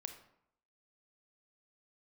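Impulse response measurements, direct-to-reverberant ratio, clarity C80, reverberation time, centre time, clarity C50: 6.5 dB, 12.0 dB, 0.75 s, 14 ms, 8.5 dB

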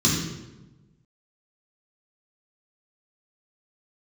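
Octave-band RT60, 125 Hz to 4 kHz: 1.5, 1.4, 1.2, 0.95, 0.85, 0.75 s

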